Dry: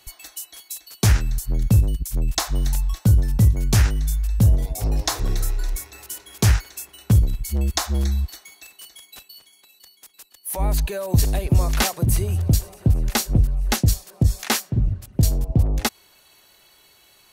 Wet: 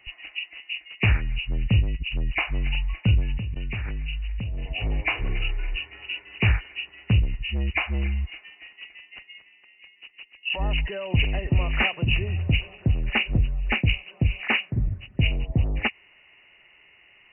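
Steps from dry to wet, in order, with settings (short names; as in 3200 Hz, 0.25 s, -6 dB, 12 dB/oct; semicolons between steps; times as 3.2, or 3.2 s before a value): nonlinear frequency compression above 1700 Hz 4:1; 3.38–4.66 level quantiser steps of 24 dB; gain -4.5 dB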